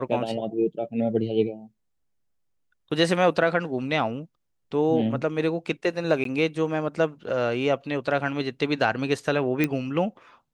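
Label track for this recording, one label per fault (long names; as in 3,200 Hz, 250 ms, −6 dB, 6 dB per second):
6.240000	6.250000	drop-out 13 ms
9.640000	9.640000	click −10 dBFS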